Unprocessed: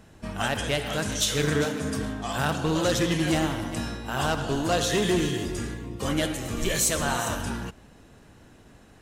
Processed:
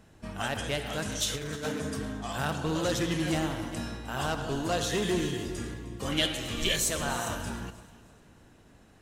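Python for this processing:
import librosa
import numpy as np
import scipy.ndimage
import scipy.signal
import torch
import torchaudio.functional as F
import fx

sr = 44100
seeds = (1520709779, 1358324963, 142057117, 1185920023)

p1 = fx.over_compress(x, sr, threshold_db=-27.0, ratio=-0.5, at=(1.33, 1.8), fade=0.02)
p2 = fx.peak_eq(p1, sr, hz=3200.0, db=12.0, octaves=1.1, at=(6.12, 6.76))
p3 = p2 + fx.echo_alternate(p2, sr, ms=154, hz=1400.0, feedback_pct=60, wet_db=-13.0, dry=0)
y = p3 * 10.0 ** (-5.0 / 20.0)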